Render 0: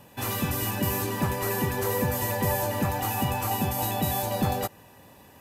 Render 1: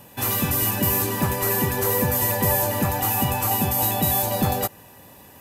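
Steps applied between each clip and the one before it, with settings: treble shelf 8.8 kHz +8.5 dB; trim +3.5 dB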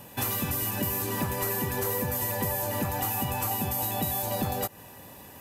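compression, threshold -26 dBFS, peak gain reduction 10 dB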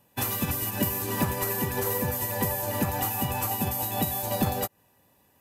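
in parallel at 0 dB: peak limiter -23.5 dBFS, peak gain reduction 9 dB; on the sum: upward expansion 2.5:1, over -38 dBFS; trim +2 dB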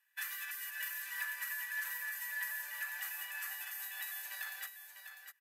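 ladder high-pass 1.6 kHz, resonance 75%; delay 649 ms -8.5 dB; trim -1.5 dB

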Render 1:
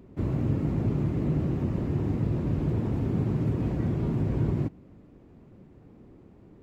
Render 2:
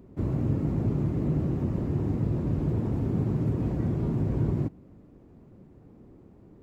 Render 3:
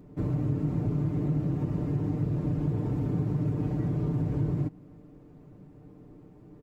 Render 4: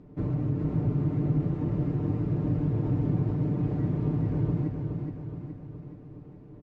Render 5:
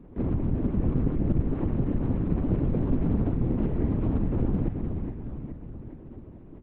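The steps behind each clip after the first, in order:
peaking EQ 2.7 kHz -5 dB 1.8 oct
comb 6.7 ms; compression 2:1, threshold -27 dBFS, peak gain reduction 5 dB
distance through air 120 m; feedback delay 420 ms, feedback 54%, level -5 dB
LPC vocoder at 8 kHz whisper; loudspeaker Doppler distortion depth 0.49 ms; trim +2 dB

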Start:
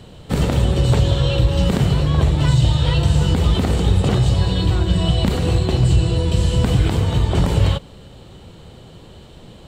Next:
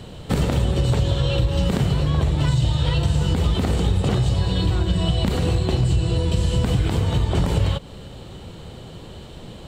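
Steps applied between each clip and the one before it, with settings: compression 2.5:1, threshold -22 dBFS, peak gain reduction 8.5 dB; trim +3 dB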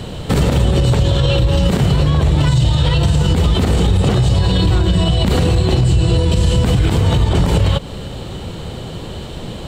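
loudness maximiser +15 dB; trim -4.5 dB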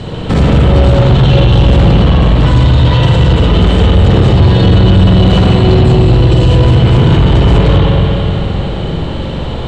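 distance through air 88 m; reverberation RT60 3.3 s, pre-delay 43 ms, DRR -5 dB; saturation -5.5 dBFS, distortion -13 dB; trim +4 dB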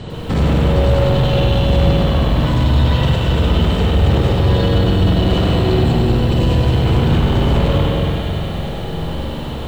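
bit-crushed delay 99 ms, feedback 80%, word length 6-bit, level -7 dB; trim -7 dB

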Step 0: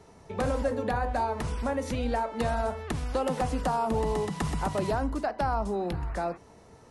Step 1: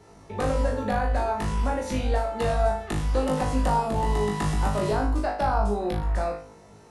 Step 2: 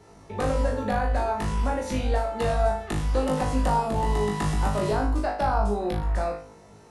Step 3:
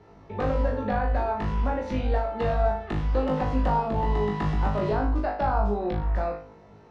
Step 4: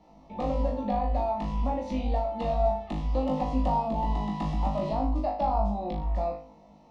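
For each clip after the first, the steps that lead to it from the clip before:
flutter echo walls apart 3.3 m, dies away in 0.44 s
no audible change
distance through air 230 m
static phaser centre 410 Hz, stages 6

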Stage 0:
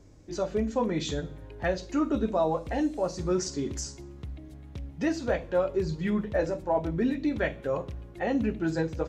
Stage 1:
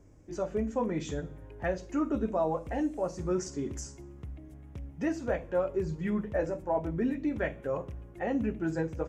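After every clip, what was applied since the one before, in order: peaking EQ 4.1 kHz -13 dB 0.68 oct; trim -3 dB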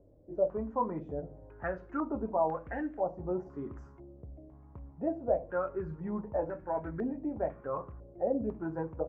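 step-sequenced low-pass 2 Hz 580–1600 Hz; trim -6 dB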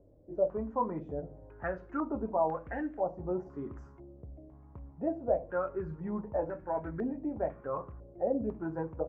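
no audible change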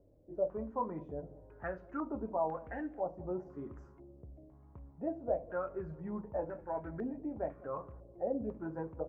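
bucket-brigade echo 197 ms, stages 1024, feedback 52%, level -20.5 dB; trim -4.5 dB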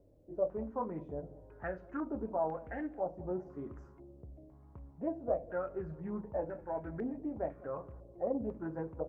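dynamic bell 1.1 kHz, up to -6 dB, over -54 dBFS, Q 3; loudspeaker Doppler distortion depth 0.16 ms; trim +1 dB

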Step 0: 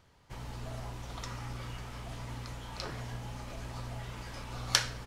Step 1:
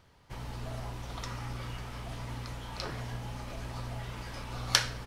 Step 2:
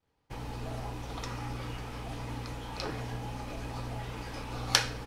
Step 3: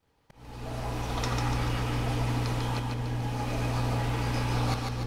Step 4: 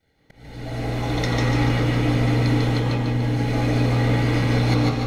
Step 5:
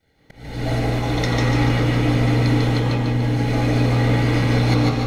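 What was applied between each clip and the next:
peaking EQ 7.1 kHz -3.5 dB 0.38 oct; trim +2 dB
expander -51 dBFS; small resonant body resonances 300/460/800/2500 Hz, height 8 dB, ringing for 45 ms
slow attack 677 ms; two-band feedback delay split 500 Hz, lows 475 ms, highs 146 ms, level -3.5 dB; trim +6.5 dB
reverberation RT60 0.40 s, pre-delay 147 ms, DRR 1.5 dB
recorder AGC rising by 10 dB/s; trim +2 dB

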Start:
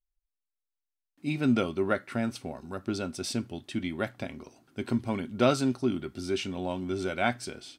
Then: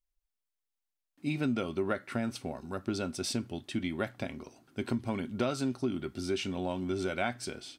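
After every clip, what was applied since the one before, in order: compression 6:1, threshold -27 dBFS, peak gain reduction 9.5 dB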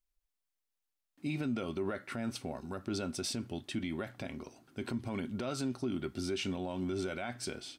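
peak limiter -26.5 dBFS, peak gain reduction 10 dB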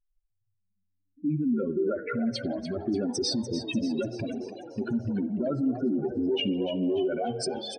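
spectral contrast enhancement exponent 3.5; on a send: frequency-shifting echo 293 ms, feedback 54%, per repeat +90 Hz, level -11 dB; on the sum: spring tank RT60 1.4 s, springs 56 ms, chirp 35 ms, DRR 15.5 dB; trim +9 dB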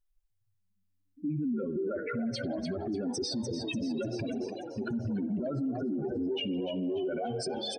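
peak limiter -28.5 dBFS, peak gain reduction 11 dB; trim +2 dB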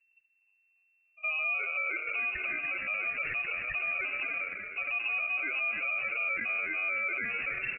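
sample-and-hold 25×; delay 82 ms -21.5 dB; frequency inversion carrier 2.7 kHz

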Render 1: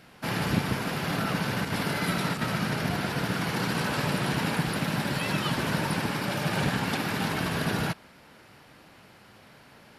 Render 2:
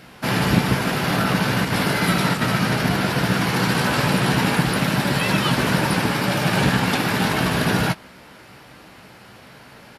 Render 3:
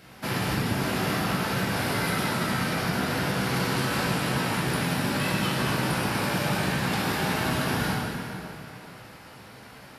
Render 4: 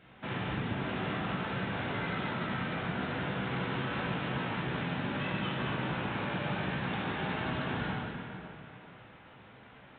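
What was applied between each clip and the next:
doubling 16 ms -9 dB; trim +8 dB
treble shelf 7.2 kHz +4.5 dB; compression, threshold -20 dBFS, peak gain reduction 9.5 dB; plate-style reverb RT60 2.9 s, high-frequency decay 0.75×, DRR -3.5 dB; trim -7.5 dB
trim -7.5 dB; µ-law 64 kbps 8 kHz

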